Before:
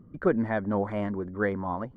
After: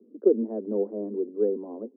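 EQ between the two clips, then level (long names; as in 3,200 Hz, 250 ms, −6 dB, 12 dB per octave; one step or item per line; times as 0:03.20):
Butterworth high-pass 210 Hz 96 dB per octave
transistor ladder low-pass 470 Hz, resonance 65%
+7.5 dB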